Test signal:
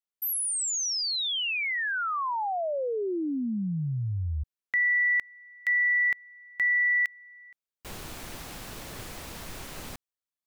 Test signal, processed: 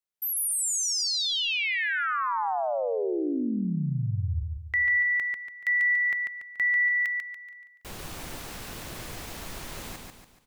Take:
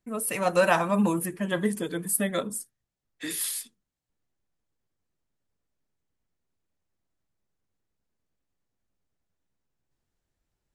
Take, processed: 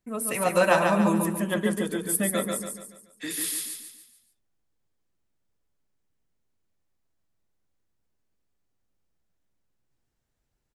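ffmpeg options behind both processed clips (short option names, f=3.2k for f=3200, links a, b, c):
-af "aecho=1:1:143|286|429|572|715:0.631|0.265|0.111|0.0467|0.0196"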